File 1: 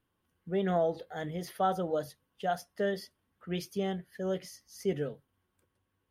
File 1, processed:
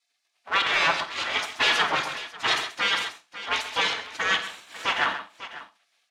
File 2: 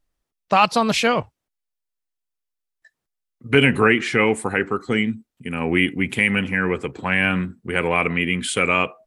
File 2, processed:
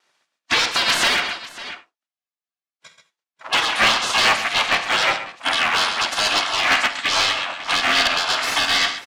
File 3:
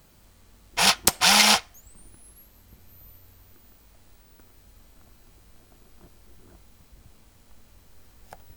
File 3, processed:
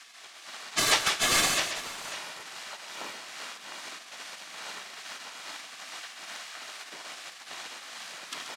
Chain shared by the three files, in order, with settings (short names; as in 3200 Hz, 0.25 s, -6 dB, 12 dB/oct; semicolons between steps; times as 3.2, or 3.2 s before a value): minimum comb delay 2.1 ms; compressor 6:1, threshold -21 dBFS; low shelf 200 Hz -5.5 dB; spectral gate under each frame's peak -20 dB weak; overdrive pedal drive 32 dB, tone 3600 Hz, clips at -5.5 dBFS; LPF 7300 Hz 12 dB/oct; on a send: tapped delay 50/132/546 ms -15/-10.5/-16 dB; on the sum: non-linear reverb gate 0.11 s flat, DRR 12 dB; AGC gain up to 4 dB; overloaded stage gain 10.5 dB; tremolo triangle 2.4 Hz, depth 40%